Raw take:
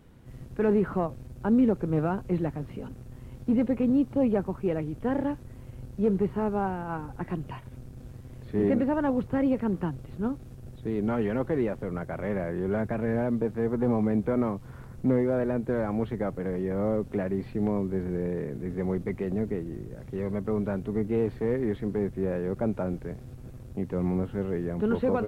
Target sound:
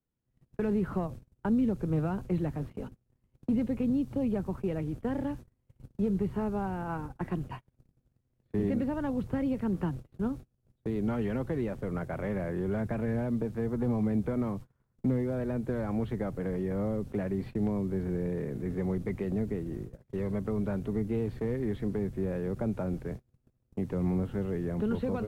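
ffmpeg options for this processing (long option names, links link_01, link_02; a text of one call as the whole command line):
ffmpeg -i in.wav -filter_complex "[0:a]agate=range=-33dB:threshold=-37dB:ratio=16:detection=peak,acrossover=split=210|3000[link_01][link_02][link_03];[link_02]acompressor=threshold=-32dB:ratio=6[link_04];[link_01][link_04][link_03]amix=inputs=3:normalize=0" out.wav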